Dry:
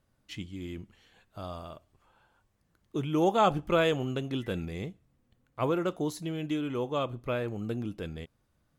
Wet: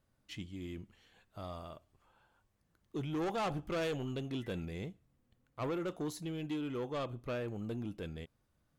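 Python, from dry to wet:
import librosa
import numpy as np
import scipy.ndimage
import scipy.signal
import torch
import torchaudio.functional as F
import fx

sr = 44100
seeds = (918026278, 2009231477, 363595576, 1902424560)

y = 10.0 ** (-27.5 / 20.0) * np.tanh(x / 10.0 ** (-27.5 / 20.0))
y = y * librosa.db_to_amplitude(-4.0)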